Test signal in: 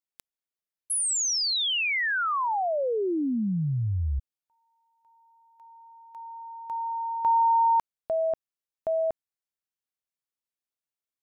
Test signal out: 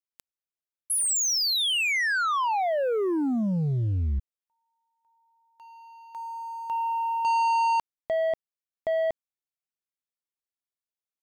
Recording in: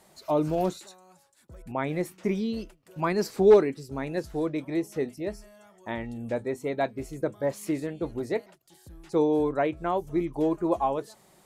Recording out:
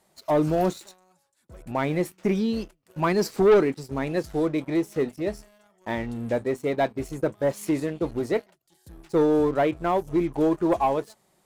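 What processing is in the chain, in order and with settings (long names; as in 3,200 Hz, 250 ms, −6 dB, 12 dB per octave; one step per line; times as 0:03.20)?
leveller curve on the samples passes 2
level −3 dB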